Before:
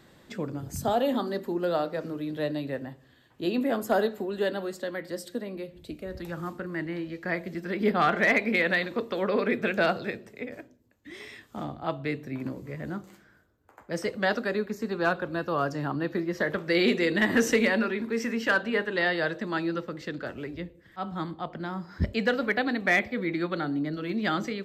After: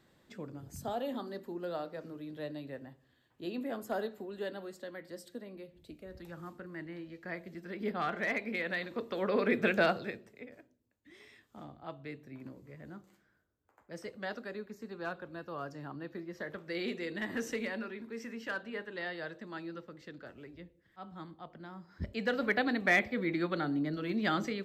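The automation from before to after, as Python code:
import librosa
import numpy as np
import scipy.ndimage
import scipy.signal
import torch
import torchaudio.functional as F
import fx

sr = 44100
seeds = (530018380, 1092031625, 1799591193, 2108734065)

y = fx.gain(x, sr, db=fx.line((8.65, -11.0), (9.68, -1.0), (10.56, -13.5), (21.95, -13.5), (22.46, -3.5)))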